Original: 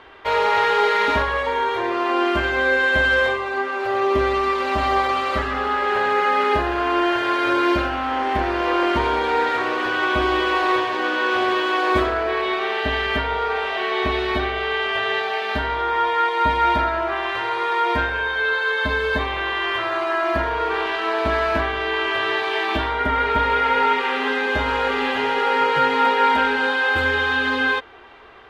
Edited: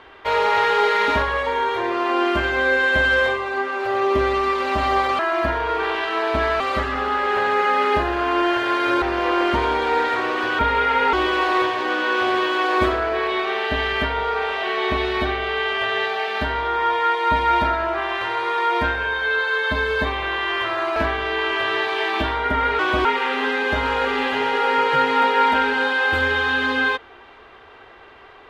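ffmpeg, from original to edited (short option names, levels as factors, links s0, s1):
-filter_complex "[0:a]asplit=9[s0][s1][s2][s3][s4][s5][s6][s7][s8];[s0]atrim=end=5.192[s9];[s1]atrim=start=20.098:end=21.512[s10];[s2]atrim=start=5.188:end=7.612[s11];[s3]atrim=start=8.438:end=10.012[s12];[s4]atrim=start=23.338:end=23.882[s13];[s5]atrim=start=10.268:end=20.102[s14];[s6]atrim=start=21.508:end=23.342[s15];[s7]atrim=start=10.008:end=10.272[s16];[s8]atrim=start=23.878[s17];[s9][s10]acrossfade=d=0.004:c1=hsin:c2=hsin[s18];[s18][s11]acrossfade=d=0.004:c1=hsin:c2=hsin[s19];[s19][s12]acrossfade=d=0.004:c1=hsin:c2=hsin[s20];[s20][s13]acrossfade=d=0.004:c1=hsin:c2=hsin[s21];[s21][s14]acrossfade=d=0.004:c1=hsin:c2=hsin[s22];[s22][s15]acrossfade=d=0.004:c1=hsin:c2=hsin[s23];[s23][s16]acrossfade=d=0.004:c1=hsin:c2=hsin[s24];[s24][s17]acrossfade=d=0.004:c1=hsin:c2=hsin"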